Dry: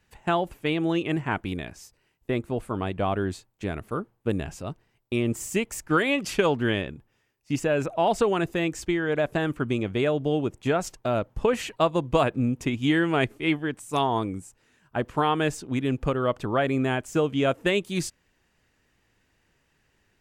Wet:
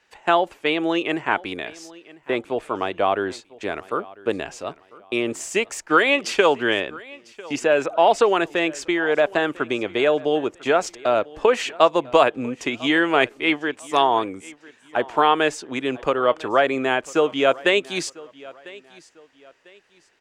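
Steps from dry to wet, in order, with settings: three-band isolator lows -21 dB, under 330 Hz, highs -16 dB, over 7700 Hz; on a send: feedback echo 0.998 s, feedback 32%, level -21.5 dB; on the sum: gain +7.5 dB

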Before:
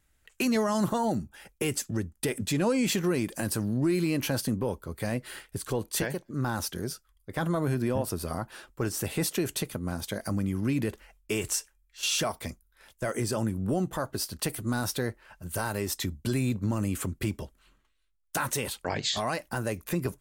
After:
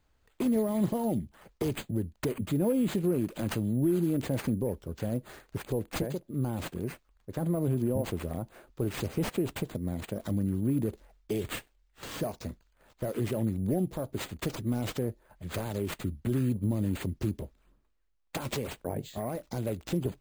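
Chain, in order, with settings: EQ curve 580 Hz 0 dB, 5000 Hz -28 dB, 9800 Hz +2 dB; careless resampling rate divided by 4×, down none, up hold; dynamic EQ 1300 Hz, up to -6 dB, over -48 dBFS, Q 0.84

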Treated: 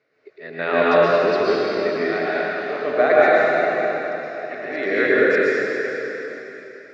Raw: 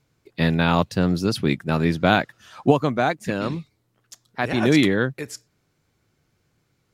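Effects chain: auto swell 0.56 s; speaker cabinet 400–4200 Hz, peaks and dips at 410 Hz +9 dB, 610 Hz +9 dB, 910 Hz -10 dB, 1300 Hz +3 dB, 1900 Hz +10 dB, 3300 Hz -10 dB; plate-style reverb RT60 3.7 s, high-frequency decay 1×, pre-delay 0.105 s, DRR -9 dB; gain +1 dB

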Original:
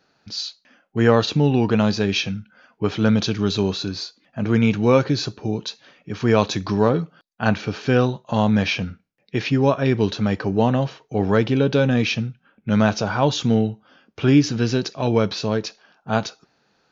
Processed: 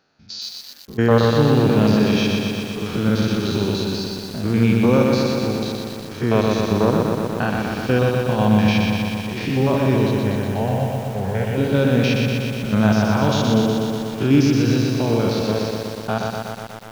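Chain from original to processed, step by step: stepped spectrum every 0.1 s; 10.11–11.58 fixed phaser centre 1200 Hz, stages 6; lo-fi delay 0.122 s, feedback 80%, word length 7-bit, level -3 dB

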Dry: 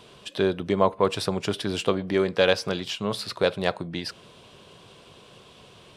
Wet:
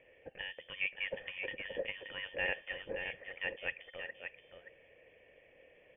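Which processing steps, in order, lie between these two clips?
on a send: echo 0.576 s -7 dB; on the sum: inverted band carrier 3300 Hz; vocal tract filter e; gain +3.5 dB

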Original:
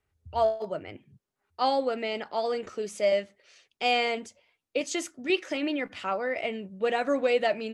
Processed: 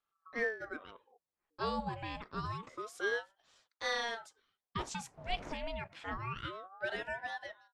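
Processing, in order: ending faded out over 0.95 s; 4.78–5.51 wind noise 530 Hz -34 dBFS; ring modulator with a swept carrier 790 Hz, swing 60%, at 0.27 Hz; gain -7.5 dB

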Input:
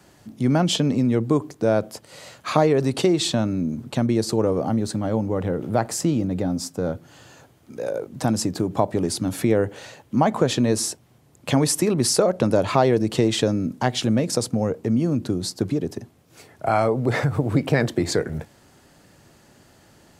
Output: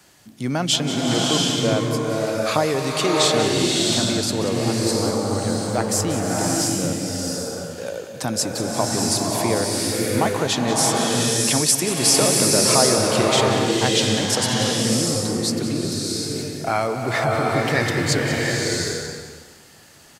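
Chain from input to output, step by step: tilt shelf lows -5.5 dB, about 1200 Hz; on a send: echo 0.185 s -12 dB; on the sum: bloom reverb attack 0.72 s, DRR -2.5 dB

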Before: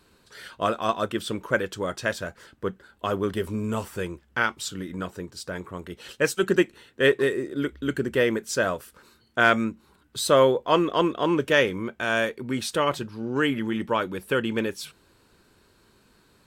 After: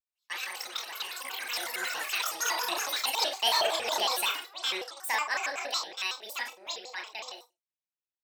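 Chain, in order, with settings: Doppler pass-by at 7.31, 7 m/s, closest 4.9 m; gate -53 dBFS, range -31 dB; tilt shelf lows -8 dB; soft clip -16.5 dBFS, distortion -13 dB; limiter -24.5 dBFS, peak gain reduction 8 dB; echoes that change speed 0.212 s, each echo +7 st, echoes 3; feedback echo 0.113 s, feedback 18%, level -10 dB; reverb RT60 0.15 s, pre-delay 57 ms, DRR 4.5 dB; speed mistake 7.5 ips tape played at 15 ips; shaped vibrato square 5.4 Hz, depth 250 cents

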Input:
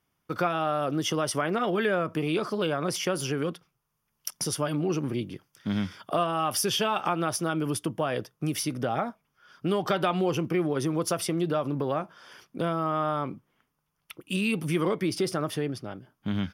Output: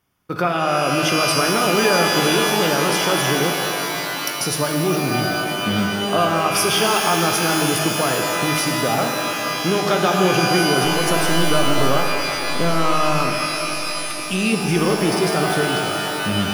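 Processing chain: 10.84–11.51 half-wave gain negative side -7 dB; shimmer reverb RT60 3.6 s, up +12 st, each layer -2 dB, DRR 2.5 dB; gain +6 dB

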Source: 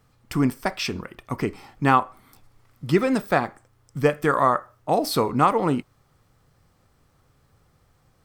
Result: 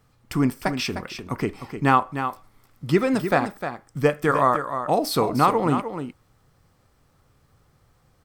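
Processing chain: echo 0.305 s -9 dB

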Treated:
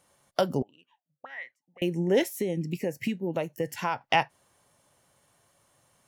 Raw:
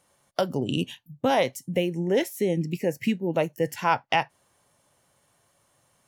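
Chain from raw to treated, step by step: 0.62–1.82 auto-wah 440–1900 Hz, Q 15, up, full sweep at -20.5 dBFS; 2.35–4.01 compressor 3:1, threshold -27 dBFS, peak gain reduction 8.5 dB

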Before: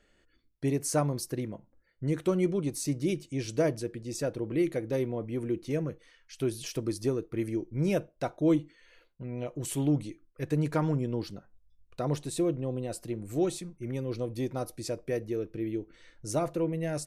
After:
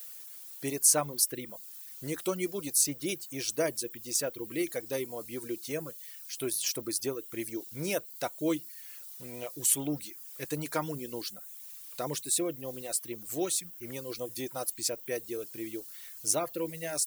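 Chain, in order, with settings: requantised 10-bit, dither triangular; RIAA curve recording; reverb removal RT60 0.69 s

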